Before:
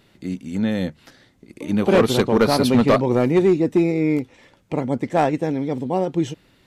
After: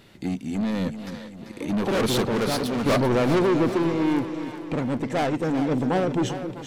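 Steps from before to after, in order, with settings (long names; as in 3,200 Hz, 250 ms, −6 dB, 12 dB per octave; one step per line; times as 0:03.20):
soft clipping −23.5 dBFS, distortion −6 dB
sample-and-hold tremolo
echo with a time of its own for lows and highs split 450 Hz, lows 268 ms, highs 390 ms, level −9.5 dB
level +5.5 dB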